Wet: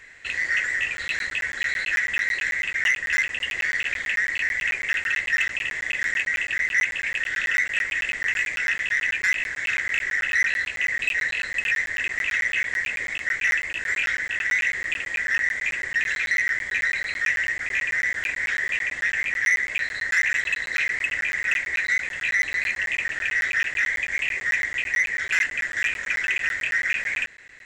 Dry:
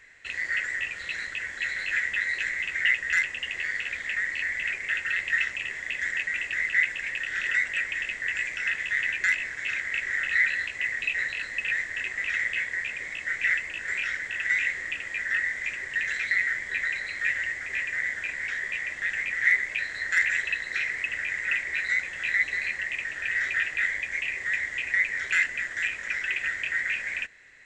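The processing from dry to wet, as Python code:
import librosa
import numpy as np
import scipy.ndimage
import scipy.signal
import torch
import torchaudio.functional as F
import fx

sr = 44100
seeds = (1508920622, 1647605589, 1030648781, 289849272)

p1 = fx.rider(x, sr, range_db=3, speed_s=0.5)
p2 = x + (p1 * librosa.db_to_amplitude(-1.5))
p3 = 10.0 ** (-14.0 / 20.0) * np.tanh(p2 / 10.0 ** (-14.0 / 20.0))
y = fx.buffer_crackle(p3, sr, first_s=0.97, period_s=0.11, block=512, kind='zero')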